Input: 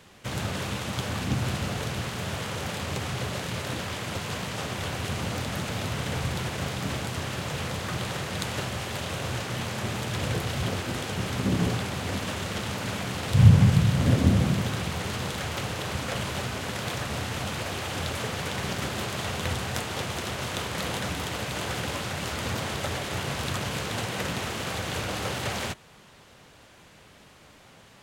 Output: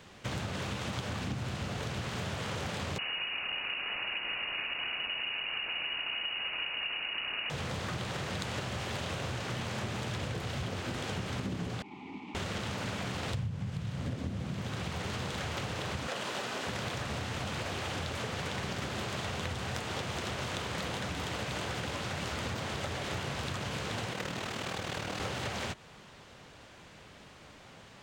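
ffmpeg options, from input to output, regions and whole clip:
-filter_complex "[0:a]asettb=1/sr,asplit=3[a][b][c];[a]atrim=end=2.984[d];[b]atrim=start=2.98:end=7.5,asetpts=PTS-STARTPTS,afade=t=in:d=0.004:c=qsin,afade=t=out:st=4.516:d=0.004:c=qsin,equalizer=f=350:t=o:w=2.6:g=5,lowpass=f=2.6k:t=q:w=0.5098,lowpass=f=2.6k:t=q:w=0.6013,lowpass=f=2.6k:t=q:w=0.9,lowpass=f=2.6k:t=q:w=2.563,afreqshift=-3000[e];[c]atrim=start=7.496[f];[d][e]acrossfade=d=0.004:c1=hsin:c2=qsin[g];[g][f]acrossfade=d=0.004:c1=qsin:c2=hsin,asettb=1/sr,asplit=3[h][i][j];[h]atrim=end=11.824[k];[i]atrim=start=11.82:end=12.35,asetpts=PTS-STARTPTS,afade=t=in:d=0.004:c=qsin,afade=t=out:st=0.526:d=0.004:c=qsin,asplit=3[l][m][n];[l]bandpass=f=300:t=q:w=8,volume=0dB[o];[m]bandpass=f=870:t=q:w=8,volume=-6dB[p];[n]bandpass=f=2.24k:t=q:w=8,volume=-9dB[q];[o][p][q]amix=inputs=3:normalize=0,bandreject=f=1.5k:w=14,aecho=1:1:4.9:0.4,atrim=end_sample=23373[r];[j]atrim=start=12.346[s];[k][r]acrossfade=d=0.004:c1=hsin:c2=qsin[t];[t][s]acrossfade=d=0.004:c1=qsin:c2=hsin,asettb=1/sr,asplit=3[u][v][w];[u]atrim=end=16.074[x];[v]atrim=start=16.07:end=16.67,asetpts=PTS-STARTPTS,afade=t=in:d=0.004:c=qsin,afade=t=out:st=0.596:d=0.004:c=qsin,highpass=280,bandreject=f=2.2k:w=18[y];[w]atrim=start=16.666[z];[x][y]acrossfade=d=0.004:c1=hsin:c2=qsin[aa];[aa][z]acrossfade=d=0.004:c1=qsin:c2=hsin,asettb=1/sr,asplit=3[ab][ac][ad];[ab]atrim=end=24.134[ae];[ac]atrim=start=24.13:end=25.2,asetpts=PTS-STARTPTS,afade=t=in:d=0.004:c=qsin,afade=t=out:st=1.066:d=0.004:c=qsin,highpass=94,acrusher=bits=8:mode=log:mix=0:aa=0.000001,tremolo=f=39:d=0.667[af];[ad]atrim=start=25.196[ag];[ae][af]acrossfade=d=0.004:c1=hsin:c2=qsin[ah];[ah][ag]acrossfade=d=0.004:c1=qsin:c2=hsin,equalizer=f=12k:w=1.3:g=-12.5,acompressor=threshold=-32dB:ratio=20"

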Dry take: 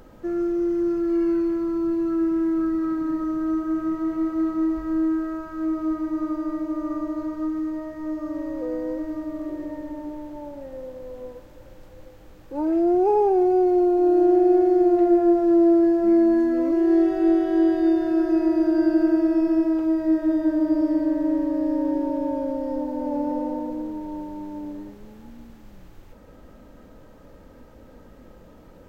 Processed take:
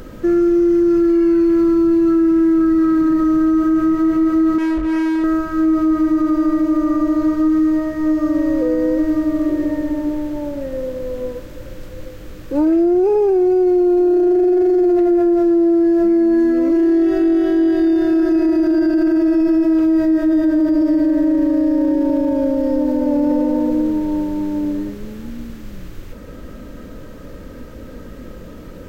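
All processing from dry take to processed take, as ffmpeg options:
-filter_complex "[0:a]asettb=1/sr,asplit=3[a][b][c];[a]atrim=end=4.584[d];[b]atrim=start=4.58:end=5.24,asetpts=PTS-STARTPTS,afade=t=in:d=0.004:c=qsin,afade=t=out:st=0.656:d=0.004:c=qsin,lowpass=f=1.1k:p=1,volume=29.5dB,asoftclip=hard,volume=-29.5dB[e];[c]atrim=start=5.236[f];[d][e]acrossfade=d=0.004:c1=hsin:c2=qsin[g];[g][f]acrossfade=d=0.004:c1=qsin:c2=hsin,equalizer=f=810:w=2.5:g=-12,alimiter=level_in=22.5dB:limit=-1dB:release=50:level=0:latency=1,volume=-8.5dB"

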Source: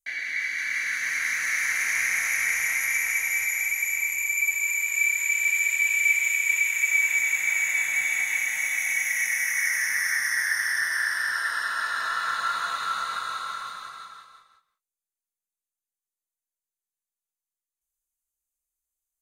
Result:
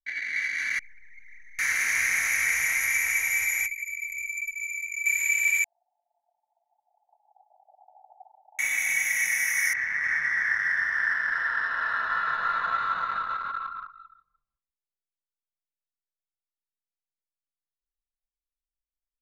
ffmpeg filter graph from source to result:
-filter_complex "[0:a]asettb=1/sr,asplit=3[a][b][c];[a]atrim=end=0.794[d];[b]atrim=start=0.79:end=1.59,asetpts=PTS-STARTPTS,afade=t=in:d=0.004:c=qsin,afade=t=out:st=0.796:d=0.004:c=qsin,highpass=f=1.4k:p=1,aeval=exprs='(tanh(112*val(0)+0.25)-tanh(0.25))/112':c=same,asplit=2[e][f];[f]adelay=33,volume=-7dB[g];[e][g]amix=inputs=2:normalize=0,atrim=end_sample=35280[h];[c]atrim=start=1.586[i];[d][h]acrossfade=d=0.004:c1=hsin:c2=qsin[j];[j][i]acrossfade=d=0.004:c1=qsin:c2=hsin,asettb=1/sr,asplit=3[k][l][m];[k]atrim=end=3.664[n];[l]atrim=start=3.66:end=5.06,asetpts=PTS-STARTPTS,afade=t=in:d=0.004:c=qsin,afade=t=out:st=1.396:d=0.004:c=qsin,highshelf=f=6k:g=-6,acrossover=split=1800|6400[o][p][q];[o]acompressor=threshold=-44dB:ratio=4[r];[p]acompressor=threshold=-33dB:ratio=4[s];[q]acompressor=threshold=-39dB:ratio=4[t];[r][s][t]amix=inputs=3:normalize=0[u];[m]atrim=start=5.056[v];[n][u]acrossfade=d=0.004:c1=hsin:c2=qsin[w];[w][v]acrossfade=d=0.004:c1=qsin:c2=hsin,asettb=1/sr,asplit=3[x][y][z];[x]atrim=end=5.644[aa];[y]atrim=start=5.64:end=8.59,asetpts=PTS-STARTPTS,afade=t=in:d=0.004:c=qsin,afade=t=out:st=2.946:d=0.004:c=qsin,aeval=exprs='0.299*sin(PI/2*2.82*val(0)/0.299)':c=same,asuperpass=centerf=720:order=8:qfactor=2.6,asplit=2[ab][ac];[ac]adelay=23,volume=-12.5dB[ad];[ab][ad]amix=inputs=2:normalize=0,atrim=end_sample=130095[ae];[z]atrim=start=8.586[af];[aa][ae]acrossfade=d=0.004:c1=hsin:c2=qsin[ag];[ag][af]acrossfade=d=0.004:c1=qsin:c2=hsin,asettb=1/sr,asplit=3[ah][ai][aj];[ah]atrim=end=9.734[ak];[ai]atrim=start=9.73:end=13.9,asetpts=PTS-STARTPTS,afade=t=in:d=0.004:c=qsin,afade=t=out:st=4.166:d=0.004:c=qsin,lowpass=2.2k,aecho=1:1:292:0.631,atrim=end_sample=183897[al];[aj]atrim=start=13.896[am];[ak][al]acrossfade=d=0.004:c1=hsin:c2=qsin[an];[an][am]acrossfade=d=0.004:c1=qsin:c2=hsin,anlmdn=10,lowshelf=f=170:g=6.5"

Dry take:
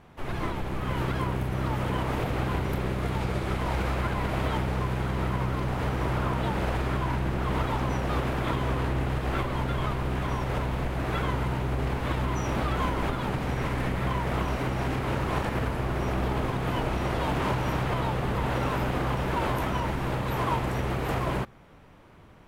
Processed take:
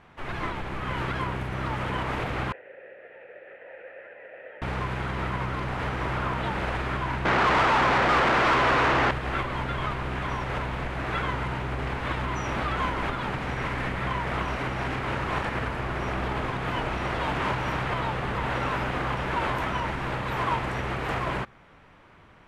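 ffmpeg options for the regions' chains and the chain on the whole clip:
-filter_complex "[0:a]asettb=1/sr,asplit=3[a][b][c];[a]atrim=end=2.524[d];[b]atrim=start=2.52:end=4.62,asetpts=PTS-STARTPTS,afade=t=in:d=0.004:c=qsin,afade=t=out:st=2.096:d=0.004:c=qsin,acrossover=split=3400[e][f];[f]acompressor=threshold=-55dB:ratio=4:attack=1:release=60[g];[e][g]amix=inputs=2:normalize=0,asplit=3[h][i][j];[h]bandpass=f=530:t=q:w=8,volume=0dB[k];[i]bandpass=f=1.84k:t=q:w=8,volume=-6dB[l];[j]bandpass=f=2.48k:t=q:w=8,volume=-9dB[m];[k][l][m]amix=inputs=3:normalize=0,acrossover=split=410 2600:gain=0.251 1 0.0794[n][o][p];[n][o][p]amix=inputs=3:normalize=0[q];[c]atrim=start=4.616[r];[d][q]acrossfade=d=0.004:c1=hsin:c2=qsin[s];[s][r]acrossfade=d=0.004:c1=qsin:c2=hsin,asettb=1/sr,asplit=3[t][u][v];[t]atrim=end=7.254[w];[u]atrim=start=7.25:end=9.11,asetpts=PTS-STARTPTS,afade=t=in:d=0.004:c=qsin,afade=t=out:st=1.856:d=0.004:c=qsin,equalizer=f=7.5k:w=0.49:g=-14,asplit=2[x][y];[y]highpass=f=720:p=1,volume=35dB,asoftclip=type=tanh:threshold=-15.5dB[z];[x][z]amix=inputs=2:normalize=0,lowpass=f=2.3k:p=1,volume=-6dB[aa];[v]atrim=start=9.106[ab];[w][aa]acrossfade=d=0.004:c1=hsin:c2=qsin[ac];[ac][ab]acrossfade=d=0.004:c1=qsin:c2=hsin,lowpass=9.4k,equalizer=f=1.8k:t=o:w=2.3:g=8,volume=-3.5dB"

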